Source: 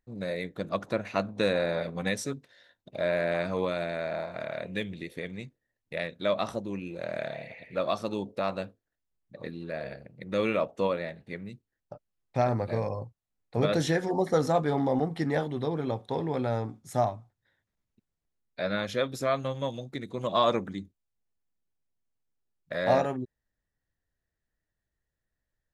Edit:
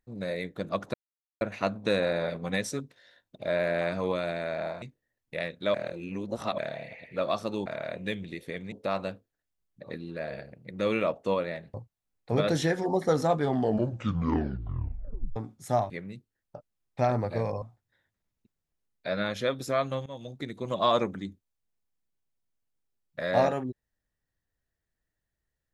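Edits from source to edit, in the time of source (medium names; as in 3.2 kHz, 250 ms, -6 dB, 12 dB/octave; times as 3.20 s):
0.94 s: insert silence 0.47 s
4.35–5.41 s: move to 8.25 s
6.33–7.17 s: reverse
11.27–12.99 s: move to 17.15 s
14.66 s: tape stop 1.95 s
19.59–19.90 s: fade in, from -16.5 dB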